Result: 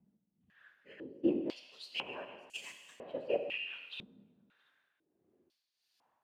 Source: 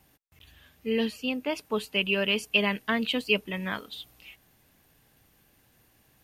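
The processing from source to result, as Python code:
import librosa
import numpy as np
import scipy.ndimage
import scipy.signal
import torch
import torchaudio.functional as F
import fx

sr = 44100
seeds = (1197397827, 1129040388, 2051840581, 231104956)

p1 = fx.transient(x, sr, attack_db=10, sustain_db=-9, at=(0.87, 1.34))
p2 = p1 * (1.0 - 0.84 / 2.0 + 0.84 / 2.0 * np.cos(2.0 * np.pi * 1.5 * (np.arange(len(p1)) / sr)))
p3 = fx.sample_hold(p2, sr, seeds[0], rate_hz=2300.0, jitter_pct=0)
p4 = p2 + (p3 * librosa.db_to_amplitude(-12.0))
p5 = fx.whisperise(p4, sr, seeds[1])
p6 = p5 + fx.echo_single(p5, sr, ms=671, db=-22.5, dry=0)
p7 = fx.rev_plate(p6, sr, seeds[2], rt60_s=1.6, hf_ratio=0.95, predelay_ms=0, drr_db=5.0)
p8 = fx.filter_held_bandpass(p7, sr, hz=2.0, low_hz=210.0, high_hz=7300.0)
y = p8 * librosa.db_to_amplitude(1.0)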